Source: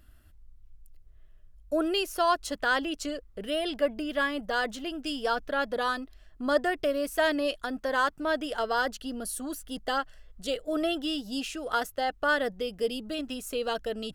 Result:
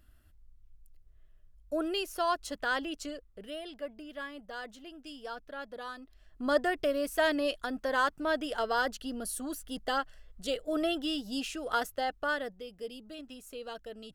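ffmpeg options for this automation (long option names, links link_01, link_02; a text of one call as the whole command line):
ffmpeg -i in.wav -af "volume=6dB,afade=type=out:start_time=2.94:duration=0.74:silence=0.398107,afade=type=in:start_time=5.97:duration=0.47:silence=0.281838,afade=type=out:start_time=11.91:duration=0.7:silence=0.334965" out.wav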